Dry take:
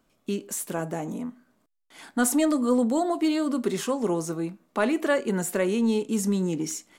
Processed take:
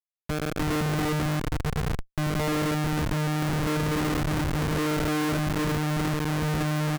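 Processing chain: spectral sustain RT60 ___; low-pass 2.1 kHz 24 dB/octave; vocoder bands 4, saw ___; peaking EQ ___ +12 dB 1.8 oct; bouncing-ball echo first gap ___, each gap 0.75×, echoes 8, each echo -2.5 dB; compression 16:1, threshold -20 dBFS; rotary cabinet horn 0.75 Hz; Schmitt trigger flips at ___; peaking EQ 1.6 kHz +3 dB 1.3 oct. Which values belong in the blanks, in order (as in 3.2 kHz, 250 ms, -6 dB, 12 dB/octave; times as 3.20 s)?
1.93 s, 152 Hz, 400 Hz, 300 ms, -25 dBFS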